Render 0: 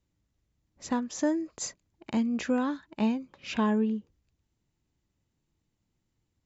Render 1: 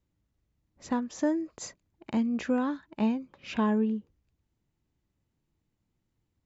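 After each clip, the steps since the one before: high shelf 3600 Hz -7.5 dB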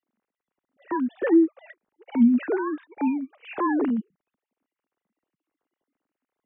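sine-wave speech; gain +6 dB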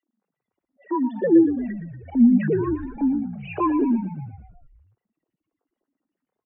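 spectral contrast raised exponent 2.3; frequency-shifting echo 0.117 s, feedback 63%, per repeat -41 Hz, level -11 dB; gain +3 dB

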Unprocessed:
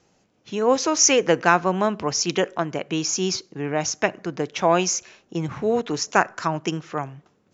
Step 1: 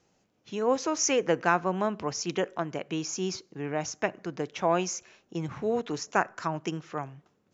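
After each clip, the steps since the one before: dynamic EQ 4700 Hz, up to -5 dB, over -36 dBFS, Q 0.72; gain -6.5 dB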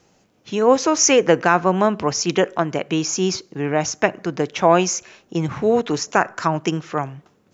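maximiser +12 dB; gain -1 dB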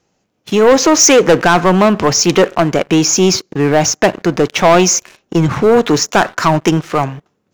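sample leveller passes 3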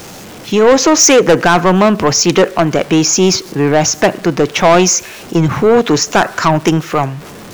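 zero-crossing step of -26 dBFS

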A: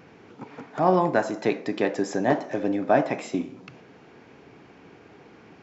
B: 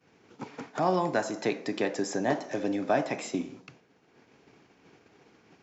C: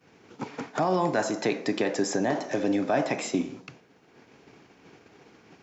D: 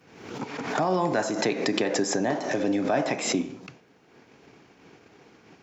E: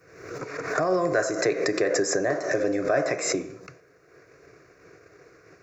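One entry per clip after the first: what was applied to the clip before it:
expander -38 dBFS; bell 6800 Hz +9 dB 1.8 oct; three-band squash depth 40%; gain -5 dB
limiter -20 dBFS, peak gain reduction 7 dB; gain +5 dB
backwards sustainer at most 69 dB/s
fixed phaser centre 860 Hz, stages 6; gain +4.5 dB

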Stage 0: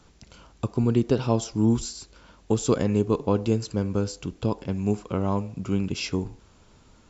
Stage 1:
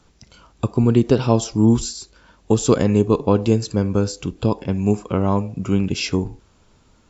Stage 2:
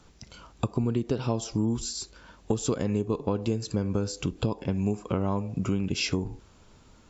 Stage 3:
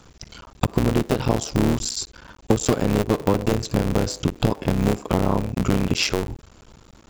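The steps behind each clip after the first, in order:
spectral noise reduction 7 dB; gain +6.5 dB
compressor 6:1, threshold -24 dBFS, peak gain reduction 14 dB
cycle switcher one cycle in 3, muted; gain +8.5 dB

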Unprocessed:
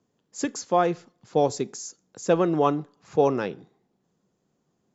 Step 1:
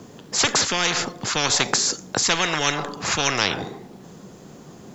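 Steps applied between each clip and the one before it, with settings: spectral compressor 10:1; gain +6 dB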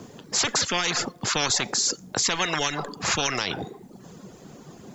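reverb removal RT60 0.7 s; limiter -12.5 dBFS, peak gain reduction 10 dB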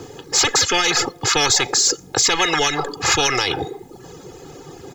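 comb 2.4 ms, depth 81%; in parallel at -5.5 dB: soft clip -20 dBFS, distortion -12 dB; on the sum: gain +2.5 dB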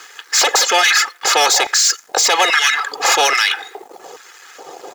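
sample leveller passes 2; LFO high-pass square 1.2 Hz 620–1600 Hz; gain -2.5 dB

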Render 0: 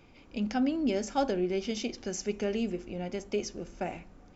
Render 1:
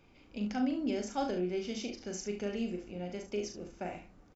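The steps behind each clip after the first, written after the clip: early reflections 39 ms -5.5 dB, 71 ms -10 dB; gain -6 dB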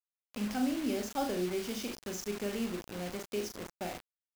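bit-crush 7-bit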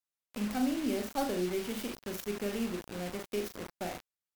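tracing distortion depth 0.24 ms; gain +1 dB; MP3 224 kbps 44100 Hz

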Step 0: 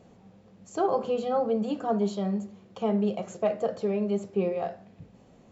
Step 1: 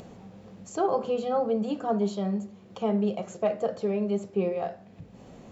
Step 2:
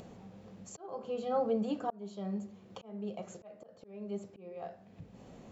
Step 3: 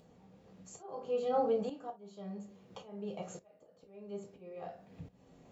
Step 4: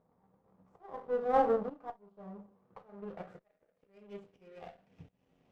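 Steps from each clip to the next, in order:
upward compressor, threshold -38 dBFS
auto swell 0.623 s; gain -4.5 dB
non-linear reverb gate 80 ms falling, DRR 2.5 dB; tremolo saw up 0.59 Hz, depth 80%
power-law curve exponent 1.4; low-pass sweep 1100 Hz -> 3000 Hz, 2.56–4.29; running maximum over 5 samples; gain +3 dB

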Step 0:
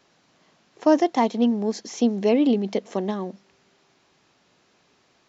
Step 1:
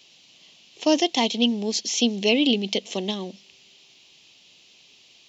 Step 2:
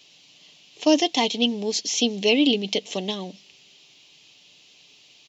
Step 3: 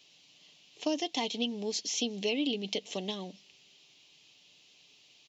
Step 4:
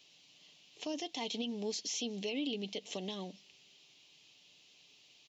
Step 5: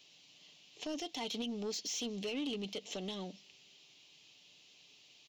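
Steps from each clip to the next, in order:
resonant high shelf 2100 Hz +11.5 dB, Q 3; gain -2 dB
comb 6.8 ms, depth 35%
compressor 3:1, threshold -21 dBFS, peak gain reduction 7 dB; gain -7.5 dB
limiter -26.5 dBFS, peak gain reduction 10 dB; gain -2 dB
soft clip -33 dBFS, distortion -17 dB; gain +1 dB

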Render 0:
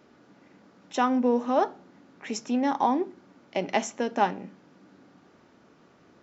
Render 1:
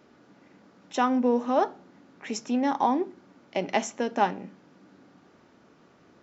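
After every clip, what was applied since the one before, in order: nothing audible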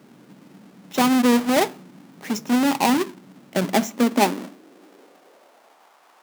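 half-waves squared off; high-pass sweep 160 Hz -> 840 Hz, 3.59–5.96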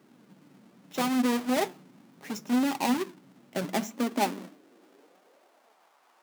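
flange 0.73 Hz, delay 2.4 ms, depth 6.6 ms, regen +56%; gain -4.5 dB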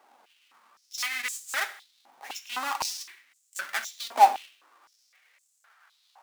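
non-linear reverb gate 0.22 s falling, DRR 10.5 dB; stepped high-pass 3.9 Hz 790–7300 Hz

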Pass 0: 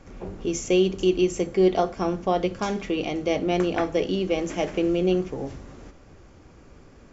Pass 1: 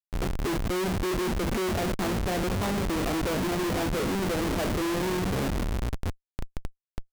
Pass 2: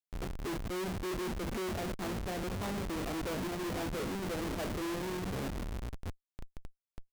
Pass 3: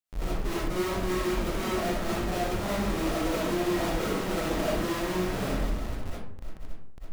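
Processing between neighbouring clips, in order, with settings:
treble ducked by the level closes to 670 Hz, closed at -18.5 dBFS; frequency-shifting echo 0.482 s, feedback 64%, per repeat -140 Hz, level -15 dB; Schmitt trigger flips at -34 dBFS
limiter -28 dBFS, peak gain reduction 7 dB; gain -6.5 dB
digital reverb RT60 0.66 s, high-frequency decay 0.6×, pre-delay 20 ms, DRR -7.5 dB

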